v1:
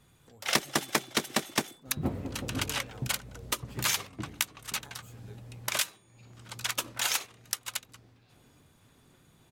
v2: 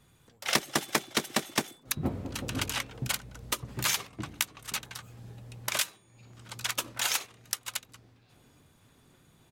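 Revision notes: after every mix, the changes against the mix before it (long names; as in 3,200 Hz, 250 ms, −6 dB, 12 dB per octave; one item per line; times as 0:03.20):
speech −8.0 dB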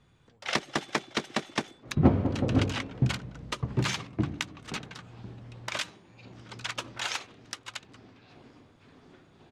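second sound +11.0 dB
master: add high-frequency loss of the air 110 metres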